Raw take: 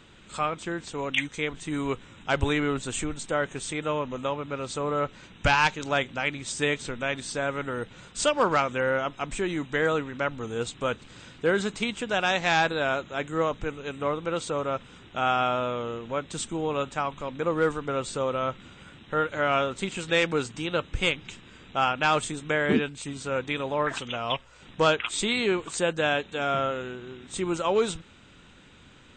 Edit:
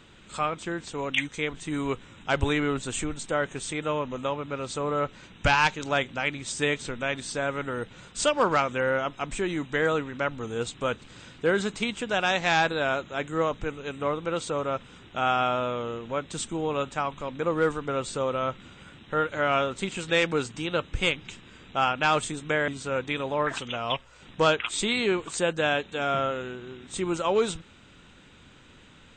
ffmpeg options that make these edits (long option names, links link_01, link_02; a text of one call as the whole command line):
ffmpeg -i in.wav -filter_complex "[0:a]asplit=2[link_01][link_02];[link_01]atrim=end=22.682[link_03];[link_02]atrim=start=23.078[link_04];[link_03][link_04]acrossfade=duration=0.004:curve1=hsin:curve2=hsin" out.wav